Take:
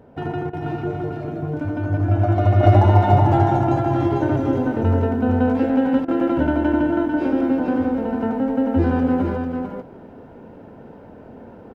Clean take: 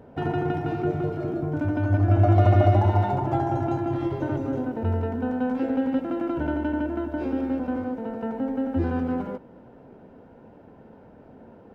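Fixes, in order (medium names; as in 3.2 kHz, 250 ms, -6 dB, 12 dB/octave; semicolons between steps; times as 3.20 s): interpolate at 0.50/6.05 s, 30 ms; inverse comb 446 ms -5.5 dB; trim 0 dB, from 2.63 s -6.5 dB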